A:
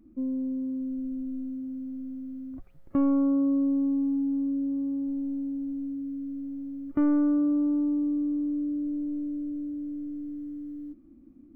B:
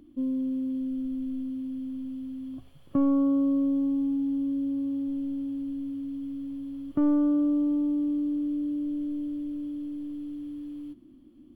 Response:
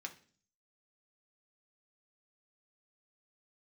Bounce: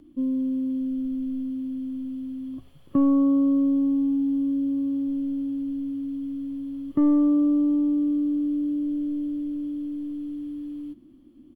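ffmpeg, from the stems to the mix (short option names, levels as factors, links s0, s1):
-filter_complex "[0:a]highpass=f=91:w=0.5412,highpass=f=91:w=1.3066,volume=0.447[s0];[1:a]volume=-1,adelay=0.5,volume=1.12[s1];[s0][s1]amix=inputs=2:normalize=0"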